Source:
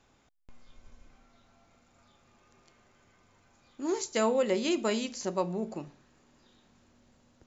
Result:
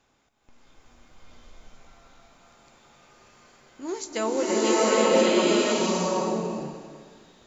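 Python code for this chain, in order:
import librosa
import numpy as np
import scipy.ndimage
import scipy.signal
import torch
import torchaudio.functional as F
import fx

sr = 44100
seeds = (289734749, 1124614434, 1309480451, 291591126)

y = fx.low_shelf(x, sr, hz=250.0, db=-5.0)
y = fx.rev_bloom(y, sr, seeds[0], attack_ms=820, drr_db=-9.5)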